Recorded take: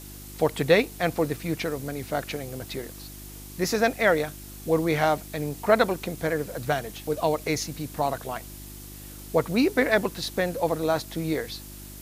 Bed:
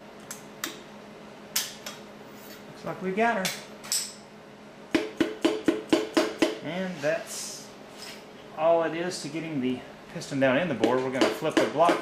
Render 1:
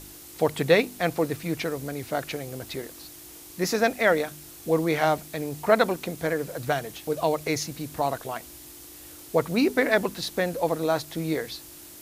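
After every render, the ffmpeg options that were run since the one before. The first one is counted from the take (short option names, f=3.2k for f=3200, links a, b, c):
-af "bandreject=f=50:t=h:w=4,bandreject=f=100:t=h:w=4,bandreject=f=150:t=h:w=4,bandreject=f=200:t=h:w=4,bandreject=f=250:t=h:w=4"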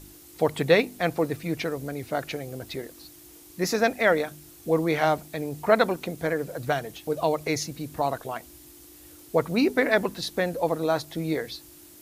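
-af "afftdn=nr=6:nf=-45"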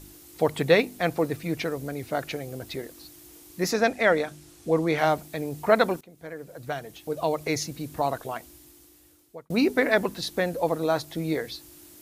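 -filter_complex "[0:a]asettb=1/sr,asplit=3[a][b][c];[a]atrim=end=3.714[d];[b]atrim=start=3.71:end=4.98,asetpts=PTS-STARTPTS,afade=t=in:d=0.004:c=qsin,afade=t=out:st=1.266:d=0.004:c=qsin,lowpass=9.7k[e];[c]atrim=start=4.976[f];[d][e]acrossfade=d=0.004:c1=hsin:c2=qsin[g];[g][f]acrossfade=d=0.004:c1=qsin:c2=hsin,asplit=3[h][i][j];[h]atrim=end=6.01,asetpts=PTS-STARTPTS,afade=t=out:st=6.006:d=0.004:c=hsin:silence=0.0749894[k];[i]atrim=start=6.01:end=9.5,asetpts=PTS-STARTPTS,afade=t=in:d=1.56:silence=0.0749894,afade=t=out:st=2.31:d=1.18[l];[j]atrim=start=9.5,asetpts=PTS-STARTPTS,afade=t=in:d=0.004:c=hsin[m];[k][l][m]concat=n=3:v=0:a=1"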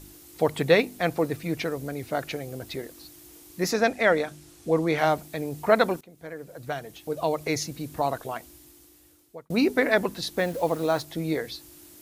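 -filter_complex "[0:a]asettb=1/sr,asplit=3[a][b][c];[a]atrim=end=10.384[d];[b]atrim=start=10.38:end=11.03,asetpts=PTS-STARTPTS,afade=t=in:d=0.004:c=qsin,afade=t=out:st=0.646:d=0.004:c=qsin,acrusher=bits=6:mix=0:aa=0.5[e];[c]atrim=start=11.026[f];[d][e]acrossfade=d=0.004:c1=hsin:c2=qsin[g];[g][f]acrossfade=d=0.004:c1=qsin:c2=hsin"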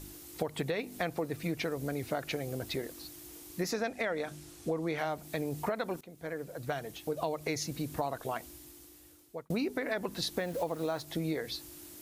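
-af "alimiter=limit=-14dB:level=0:latency=1:release=217,acompressor=threshold=-30dB:ratio=6"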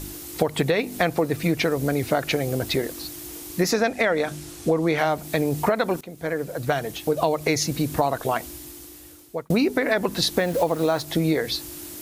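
-af "volume=12dB"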